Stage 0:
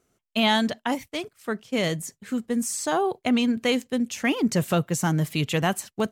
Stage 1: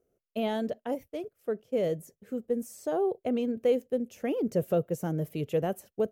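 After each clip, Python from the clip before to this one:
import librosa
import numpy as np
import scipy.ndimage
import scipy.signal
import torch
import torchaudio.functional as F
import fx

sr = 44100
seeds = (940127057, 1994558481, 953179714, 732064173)

y = fx.graphic_eq(x, sr, hz=(125, 250, 500, 1000, 2000, 4000, 8000), db=(-3, -4, 11, -11, -8, -12, -12))
y = y * librosa.db_to_amplitude(-5.5)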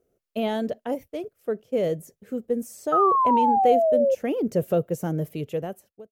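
y = fx.fade_out_tail(x, sr, length_s=0.93)
y = fx.spec_paint(y, sr, seeds[0], shape='fall', start_s=2.92, length_s=1.23, low_hz=520.0, high_hz=1300.0, level_db=-24.0)
y = y * librosa.db_to_amplitude(4.0)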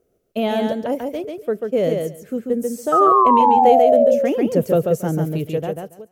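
y = fx.echo_feedback(x, sr, ms=140, feedback_pct=15, wet_db=-4.0)
y = y * librosa.db_to_amplitude(5.0)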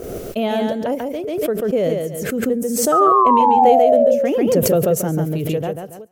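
y = fx.pre_swell(x, sr, db_per_s=33.0)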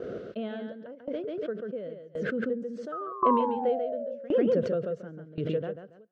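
y = fx.cabinet(x, sr, low_hz=120.0, low_slope=12, high_hz=3800.0, hz=(210.0, 500.0, 830.0, 1500.0, 2400.0), db=(4, 5, -10, 9, -6))
y = fx.tremolo_decay(y, sr, direction='decaying', hz=0.93, depth_db=21)
y = y * librosa.db_to_amplitude(-7.0)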